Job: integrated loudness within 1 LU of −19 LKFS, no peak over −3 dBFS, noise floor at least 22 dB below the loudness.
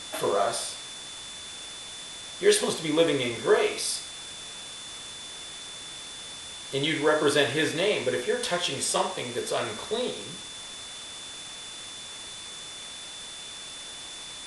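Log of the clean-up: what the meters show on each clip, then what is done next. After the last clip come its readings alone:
interfering tone 3,500 Hz; level of the tone −41 dBFS; background noise floor −41 dBFS; target noise floor −51 dBFS; integrated loudness −29.0 LKFS; sample peak −8.0 dBFS; target loudness −19.0 LKFS
→ notch filter 3,500 Hz, Q 30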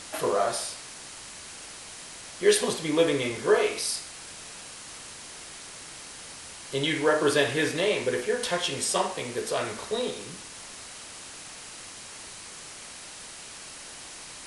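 interfering tone none found; background noise floor −44 dBFS; target noise floor −49 dBFS
→ noise reduction from a noise print 6 dB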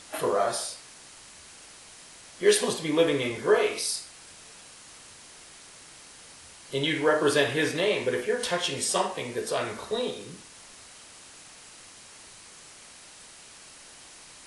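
background noise floor −50 dBFS; integrated loudness −26.5 LKFS; sample peak −8.5 dBFS; target loudness −19.0 LKFS
→ level +7.5 dB
brickwall limiter −3 dBFS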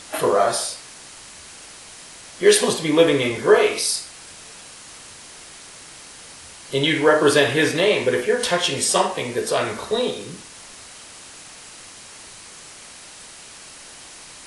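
integrated loudness −19.0 LKFS; sample peak −3.0 dBFS; background noise floor −42 dBFS

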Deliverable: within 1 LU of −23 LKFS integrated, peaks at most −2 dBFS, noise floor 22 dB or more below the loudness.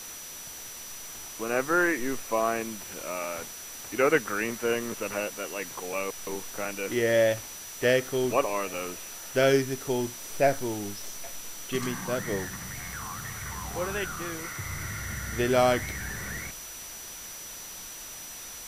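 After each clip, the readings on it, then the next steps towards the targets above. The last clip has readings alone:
interfering tone 5,900 Hz; level of the tone −43 dBFS; background noise floor −42 dBFS; target noise floor −52 dBFS; integrated loudness −30.0 LKFS; sample peak −10.0 dBFS; target loudness −23.0 LKFS
→ notch filter 5,900 Hz, Q 30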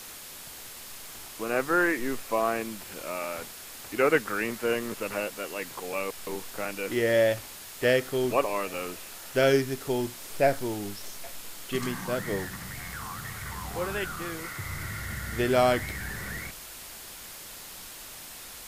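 interfering tone none found; background noise floor −44 dBFS; target noise floor −51 dBFS
→ broadband denoise 7 dB, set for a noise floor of −44 dBFS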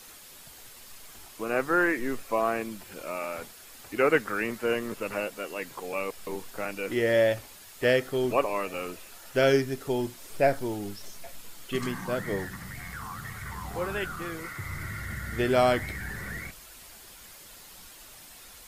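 background noise floor −49 dBFS; target noise floor −52 dBFS
→ broadband denoise 6 dB, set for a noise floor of −49 dBFS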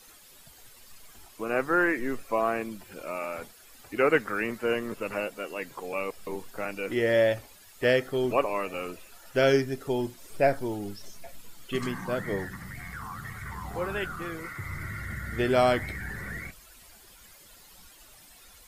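background noise floor −53 dBFS; integrated loudness −29.5 LKFS; sample peak −10.0 dBFS; target loudness −23.0 LKFS
→ level +6.5 dB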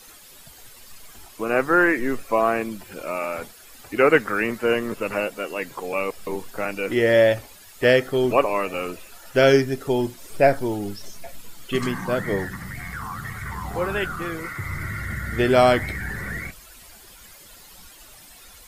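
integrated loudness −23.0 LKFS; sample peak −3.5 dBFS; background noise floor −47 dBFS

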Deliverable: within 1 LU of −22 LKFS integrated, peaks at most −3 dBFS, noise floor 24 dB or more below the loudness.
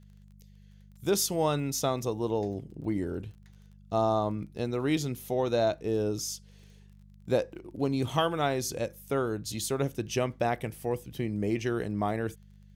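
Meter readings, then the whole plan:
crackle rate 20 per second; mains hum 50 Hz; hum harmonics up to 200 Hz; level of the hum −51 dBFS; integrated loudness −30.5 LKFS; sample peak −12.5 dBFS; target loudness −22.0 LKFS
→ click removal
hum removal 50 Hz, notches 4
level +8.5 dB

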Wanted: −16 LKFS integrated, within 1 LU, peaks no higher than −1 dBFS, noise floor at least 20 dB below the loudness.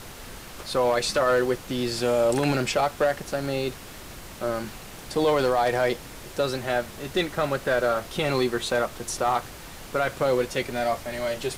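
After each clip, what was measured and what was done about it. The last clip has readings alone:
share of clipped samples 0.6%; peaks flattened at −15.0 dBFS; background noise floor −42 dBFS; target noise floor −46 dBFS; integrated loudness −25.5 LKFS; sample peak −15.0 dBFS; target loudness −16.0 LKFS
→ clipped peaks rebuilt −15 dBFS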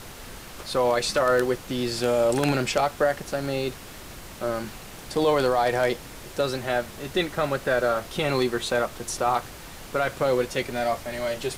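share of clipped samples 0.0%; background noise floor −42 dBFS; target noise floor −46 dBFS
→ noise reduction from a noise print 6 dB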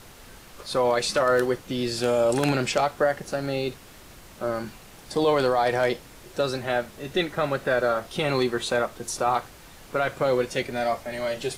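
background noise floor −48 dBFS; integrated loudness −25.5 LKFS; sample peak −6.0 dBFS; target loudness −16.0 LKFS
→ level +9.5 dB
brickwall limiter −1 dBFS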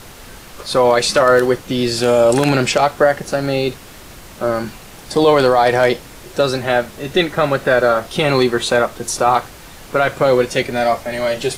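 integrated loudness −16.0 LKFS; sample peak −1.0 dBFS; background noise floor −38 dBFS

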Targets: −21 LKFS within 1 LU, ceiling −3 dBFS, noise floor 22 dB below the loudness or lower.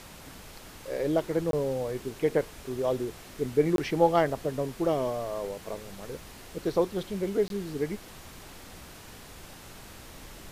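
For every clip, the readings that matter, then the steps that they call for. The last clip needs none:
number of dropouts 3; longest dropout 22 ms; background noise floor −48 dBFS; target noise floor −52 dBFS; integrated loudness −29.5 LKFS; sample peak −9.0 dBFS; target loudness −21.0 LKFS
→ repair the gap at 0:01.51/0:03.76/0:07.48, 22 ms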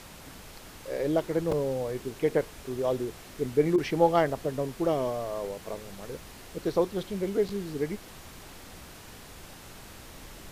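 number of dropouts 0; background noise floor −48 dBFS; target noise floor −52 dBFS
→ noise reduction from a noise print 6 dB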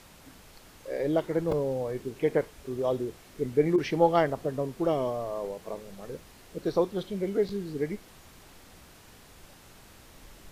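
background noise floor −53 dBFS; integrated loudness −29.5 LKFS; sample peak −9.0 dBFS; target loudness −21.0 LKFS
→ level +8.5 dB
brickwall limiter −3 dBFS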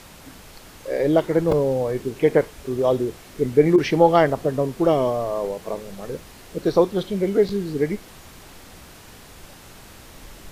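integrated loudness −21.0 LKFS; sample peak −3.0 dBFS; background noise floor −45 dBFS

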